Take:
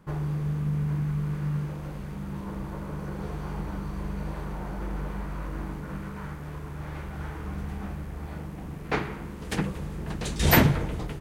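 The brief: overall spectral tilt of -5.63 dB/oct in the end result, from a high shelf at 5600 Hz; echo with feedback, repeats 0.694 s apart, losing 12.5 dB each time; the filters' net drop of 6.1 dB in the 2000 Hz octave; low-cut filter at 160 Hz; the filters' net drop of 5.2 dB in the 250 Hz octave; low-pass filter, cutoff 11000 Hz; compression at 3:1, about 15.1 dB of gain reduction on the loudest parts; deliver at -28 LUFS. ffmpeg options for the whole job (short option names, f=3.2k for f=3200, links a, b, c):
-af "highpass=160,lowpass=11k,equalizer=f=250:t=o:g=-5.5,equalizer=f=2k:t=o:g=-8,highshelf=f=5.6k:g=4,acompressor=threshold=-38dB:ratio=3,aecho=1:1:694|1388|2082:0.237|0.0569|0.0137,volume=13.5dB"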